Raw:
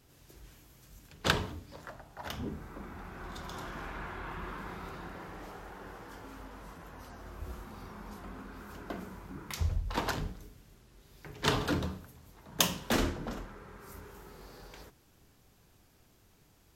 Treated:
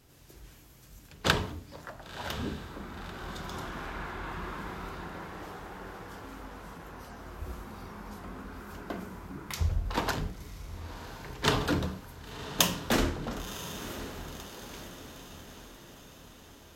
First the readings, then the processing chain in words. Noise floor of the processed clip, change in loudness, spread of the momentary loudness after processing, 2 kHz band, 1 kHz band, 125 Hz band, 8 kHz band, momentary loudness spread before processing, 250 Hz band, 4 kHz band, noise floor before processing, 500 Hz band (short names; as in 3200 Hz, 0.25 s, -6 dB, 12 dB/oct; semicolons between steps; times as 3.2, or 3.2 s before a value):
-53 dBFS, +2.0 dB, 20 LU, +3.0 dB, +3.0 dB, +3.0 dB, +3.0 dB, 21 LU, +3.0 dB, +3.0 dB, -64 dBFS, +3.0 dB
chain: diffused feedback echo 1.032 s, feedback 56%, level -12 dB; gain +2.5 dB